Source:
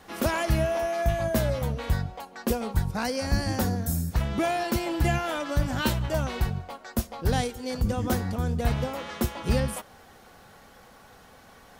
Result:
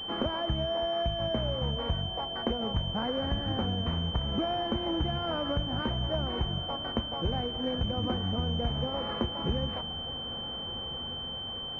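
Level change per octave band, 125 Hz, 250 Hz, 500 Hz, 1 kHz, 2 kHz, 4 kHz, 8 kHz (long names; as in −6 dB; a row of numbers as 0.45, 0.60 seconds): −5.0 dB, −3.5 dB, −3.5 dB, −3.5 dB, −9.5 dB, +8.5 dB, below −25 dB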